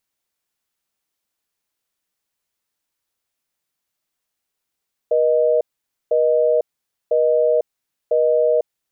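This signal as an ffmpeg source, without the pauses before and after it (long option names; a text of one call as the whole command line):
ffmpeg -f lavfi -i "aevalsrc='0.158*(sin(2*PI*480*t)+sin(2*PI*620*t))*clip(min(mod(t,1),0.5-mod(t,1))/0.005,0,1)':duration=3.59:sample_rate=44100" out.wav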